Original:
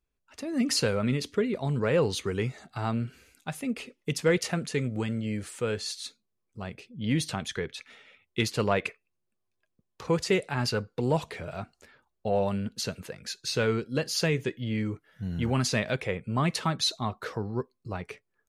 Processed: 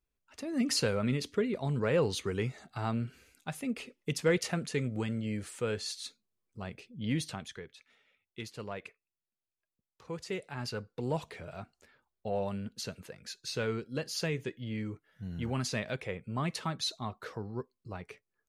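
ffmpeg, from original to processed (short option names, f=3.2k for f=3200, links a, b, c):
-af "volume=4.5dB,afade=t=out:st=6.97:d=0.71:silence=0.266073,afade=t=in:st=10.04:d=1.07:silence=0.398107"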